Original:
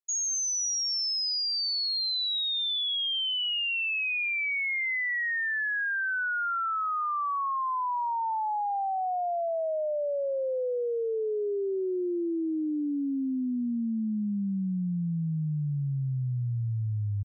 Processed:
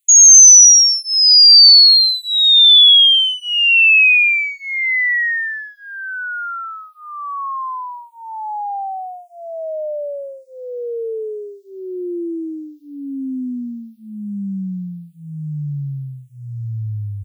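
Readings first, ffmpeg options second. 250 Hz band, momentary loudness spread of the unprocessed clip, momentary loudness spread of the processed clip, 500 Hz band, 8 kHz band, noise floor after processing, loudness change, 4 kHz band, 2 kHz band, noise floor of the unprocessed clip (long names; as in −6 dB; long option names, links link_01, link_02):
+3.0 dB, 4 LU, 23 LU, +3.0 dB, can't be measured, −43 dBFS, +21.5 dB, +19.5 dB, +13.0 dB, −29 dBFS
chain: -filter_complex "[0:a]aexciter=amount=6.9:drive=4.7:freq=2200,asplit=2[link_01][link_02];[link_02]afreqshift=-0.99[link_03];[link_01][link_03]amix=inputs=2:normalize=1,volume=6dB"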